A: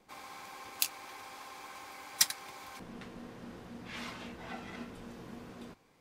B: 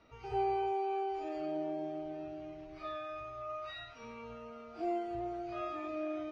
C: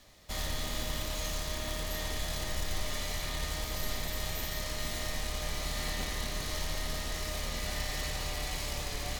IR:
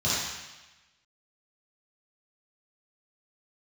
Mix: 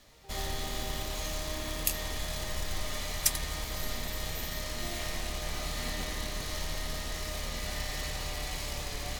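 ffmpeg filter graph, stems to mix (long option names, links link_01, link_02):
-filter_complex "[0:a]aexciter=amount=1.2:drive=8.8:freq=2200,adelay=1050,volume=-6.5dB[link_01];[1:a]volume=-12.5dB[link_02];[2:a]volume=-0.5dB[link_03];[link_01][link_02][link_03]amix=inputs=3:normalize=0"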